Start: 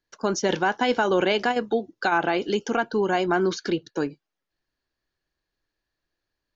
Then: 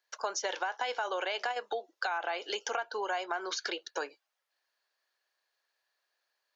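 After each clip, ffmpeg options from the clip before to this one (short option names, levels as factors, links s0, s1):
-af "highpass=f=570:w=0.5412,highpass=f=570:w=1.3066,alimiter=limit=0.158:level=0:latency=1:release=40,acompressor=threshold=0.0178:ratio=5,volume=1.5"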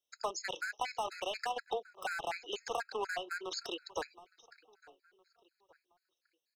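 -filter_complex "[0:a]acrossover=split=260|550|2100[s0][s1][s2][s3];[s2]acrusher=bits=5:mix=0:aa=0.5[s4];[s0][s1][s4][s3]amix=inputs=4:normalize=0,asplit=2[s5][s6];[s6]adelay=866,lowpass=f=3700:p=1,volume=0.112,asplit=2[s7][s8];[s8]adelay=866,lowpass=f=3700:p=1,volume=0.37,asplit=2[s9][s10];[s10]adelay=866,lowpass=f=3700:p=1,volume=0.37[s11];[s5][s7][s9][s11]amix=inputs=4:normalize=0,afftfilt=real='re*gt(sin(2*PI*4.1*pts/sr)*(1-2*mod(floor(b*sr/1024/1300),2)),0)':imag='im*gt(sin(2*PI*4.1*pts/sr)*(1-2*mod(floor(b*sr/1024/1300),2)),0)':win_size=1024:overlap=0.75,volume=0.891"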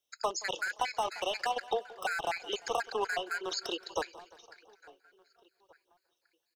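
-af "aecho=1:1:174|348|522|696|870:0.1|0.059|0.0348|0.0205|0.0121,volume=1.68"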